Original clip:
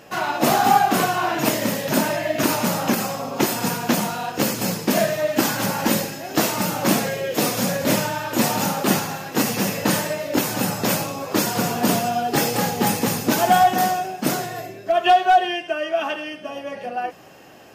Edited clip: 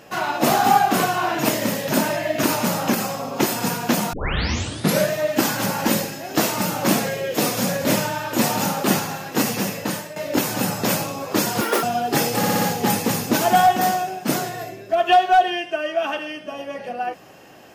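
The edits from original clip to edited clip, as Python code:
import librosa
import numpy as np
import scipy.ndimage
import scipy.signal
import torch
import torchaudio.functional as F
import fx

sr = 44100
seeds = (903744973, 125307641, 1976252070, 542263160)

y = fx.edit(x, sr, fx.tape_start(start_s=4.13, length_s=0.96),
    fx.fade_out_to(start_s=9.47, length_s=0.69, floor_db=-13.0),
    fx.speed_span(start_s=11.61, length_s=0.43, speed=1.95),
    fx.stutter(start_s=12.58, slice_s=0.06, count=5), tone=tone)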